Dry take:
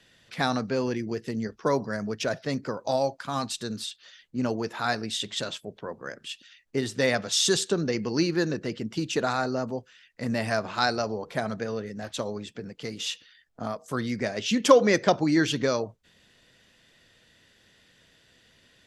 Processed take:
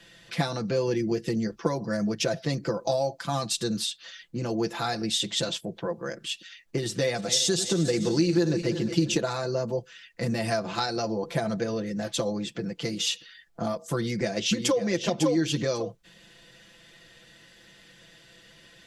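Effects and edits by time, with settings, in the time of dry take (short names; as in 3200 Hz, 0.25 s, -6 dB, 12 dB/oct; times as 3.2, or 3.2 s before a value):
6.86–9.17 regenerating reverse delay 0.176 s, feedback 62%, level -13.5 dB
13.97–14.81 echo throw 0.55 s, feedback 10%, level -4 dB
whole clip: compressor 16:1, threshold -26 dBFS; dynamic EQ 1400 Hz, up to -7 dB, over -46 dBFS, Q 0.72; comb 5.9 ms, depth 80%; gain +4.5 dB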